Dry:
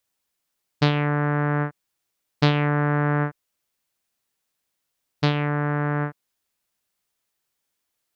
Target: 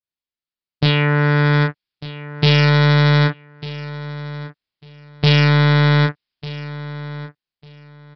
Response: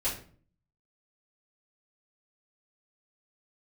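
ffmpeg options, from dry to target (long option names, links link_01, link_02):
-filter_complex "[0:a]agate=range=-18dB:threshold=-24dB:ratio=16:detection=peak,equalizer=frequency=780:width=0.56:gain=-6,dynaudnorm=framelen=270:gausssize=11:maxgain=14dB,aresample=11025,asoftclip=type=hard:threshold=-17dB,aresample=44100,asplit=2[link_01][link_02];[link_02]adelay=32,volume=-6dB[link_03];[link_01][link_03]amix=inputs=2:normalize=0,asplit=2[link_04][link_05];[link_05]aecho=0:1:1198|2396:0.168|0.0353[link_06];[link_04][link_06]amix=inputs=2:normalize=0,adynamicequalizer=threshold=0.00794:dfrequency=1900:dqfactor=0.7:tfrequency=1900:tqfactor=0.7:attack=5:release=100:ratio=0.375:range=3:mode=boostabove:tftype=highshelf,volume=6dB"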